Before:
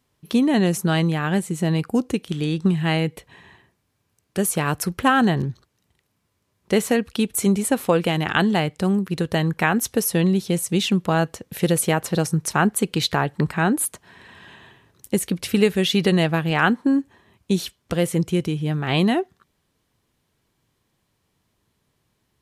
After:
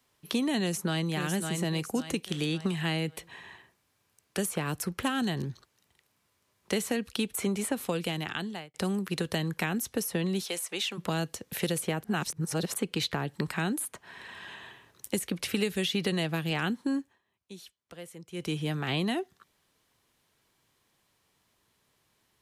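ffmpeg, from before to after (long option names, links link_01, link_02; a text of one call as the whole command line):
ffmpeg -i in.wav -filter_complex "[0:a]asplit=2[link_01][link_02];[link_02]afade=type=in:start_time=0.61:duration=0.01,afade=type=out:start_time=1.09:duration=0.01,aecho=0:1:550|1100|1650|2200:0.398107|0.139338|0.0487681|0.0170688[link_03];[link_01][link_03]amix=inputs=2:normalize=0,asplit=3[link_04][link_05][link_06];[link_04]afade=type=out:start_time=10.42:duration=0.02[link_07];[link_05]highpass=610,afade=type=in:start_time=10.42:duration=0.02,afade=type=out:start_time=10.97:duration=0.02[link_08];[link_06]afade=type=in:start_time=10.97:duration=0.02[link_09];[link_07][link_08][link_09]amix=inputs=3:normalize=0,asplit=6[link_10][link_11][link_12][link_13][link_14][link_15];[link_10]atrim=end=8.74,asetpts=PTS-STARTPTS,afade=type=out:start_time=7.81:duration=0.93[link_16];[link_11]atrim=start=8.74:end=12.042,asetpts=PTS-STARTPTS,afade=type=in:duration=0.004:curve=hsin[link_17];[link_12]atrim=start=12.038:end=12.742,asetpts=PTS-STARTPTS,areverse[link_18];[link_13]atrim=start=12.738:end=17.23,asetpts=PTS-STARTPTS,afade=type=out:start_time=4.212:duration=0.28:curve=qua:silence=0.0944061[link_19];[link_14]atrim=start=17.23:end=18.25,asetpts=PTS-STARTPTS,volume=-20.5dB[link_20];[link_15]atrim=start=18.25,asetpts=PTS-STARTPTS,afade=type=in:duration=0.28:curve=qua:silence=0.0944061[link_21];[link_16][link_17]concat=n=2:v=0:a=1[link_22];[link_22][link_18]acrossfade=duration=0.004:curve1=hsin:curve2=hsin[link_23];[link_19][link_20][link_21]concat=n=3:v=0:a=1[link_24];[link_23][link_24]acrossfade=duration=0.004:curve1=hsin:curve2=hsin,lowshelf=frequency=390:gain=-10.5,acrossover=split=180|360|3000[link_25][link_26][link_27][link_28];[link_25]acompressor=threshold=-38dB:ratio=4[link_29];[link_26]acompressor=threshold=-35dB:ratio=4[link_30];[link_27]acompressor=threshold=-38dB:ratio=4[link_31];[link_28]acompressor=threshold=-38dB:ratio=4[link_32];[link_29][link_30][link_31][link_32]amix=inputs=4:normalize=0,volume=2dB" out.wav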